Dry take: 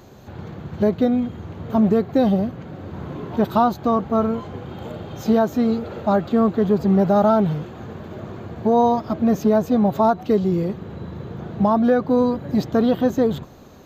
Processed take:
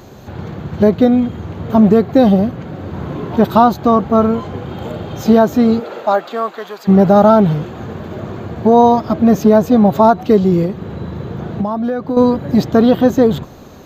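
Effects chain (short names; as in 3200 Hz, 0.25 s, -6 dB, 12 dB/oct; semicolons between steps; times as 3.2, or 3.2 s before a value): 5.79–6.87 HPF 340 Hz -> 1400 Hz 12 dB/oct; 10.65–12.17 compressor 6:1, threshold -24 dBFS, peak gain reduction 11 dB; gain +7.5 dB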